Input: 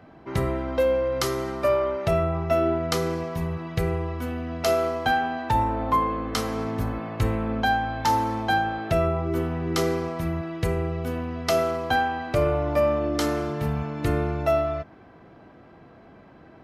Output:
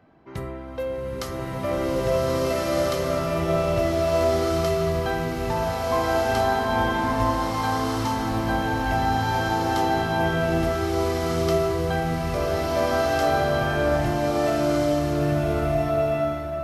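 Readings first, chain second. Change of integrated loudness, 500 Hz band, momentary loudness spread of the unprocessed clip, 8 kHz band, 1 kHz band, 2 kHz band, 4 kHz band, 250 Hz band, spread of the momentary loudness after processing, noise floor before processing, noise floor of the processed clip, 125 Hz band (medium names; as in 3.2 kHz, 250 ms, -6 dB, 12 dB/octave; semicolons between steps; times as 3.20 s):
+2.0 dB, +2.5 dB, 6 LU, +2.0 dB, +1.5 dB, +2.5 dB, +2.5 dB, +2.5 dB, 5 LU, -50 dBFS, -31 dBFS, +1.5 dB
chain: swelling reverb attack 1640 ms, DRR -9 dB; trim -7.5 dB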